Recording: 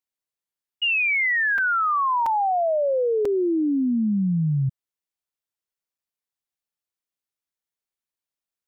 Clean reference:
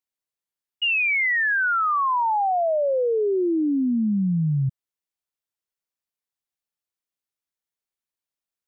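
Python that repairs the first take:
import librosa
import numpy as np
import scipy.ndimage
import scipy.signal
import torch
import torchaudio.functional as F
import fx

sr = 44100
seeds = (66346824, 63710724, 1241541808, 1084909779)

y = fx.fix_interpolate(x, sr, at_s=(1.58, 2.26, 3.25, 5.98), length_ms=4.2)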